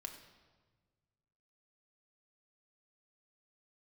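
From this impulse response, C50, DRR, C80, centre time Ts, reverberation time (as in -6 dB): 8.0 dB, 3.0 dB, 9.5 dB, 23 ms, 1.4 s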